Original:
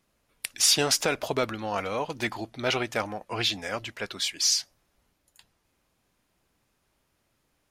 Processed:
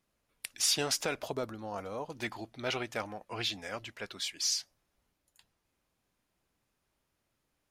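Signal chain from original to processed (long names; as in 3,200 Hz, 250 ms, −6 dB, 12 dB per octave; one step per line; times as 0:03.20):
0:01.31–0:02.12: parametric band 2,500 Hz −11.5 dB 1.5 octaves
level −7.5 dB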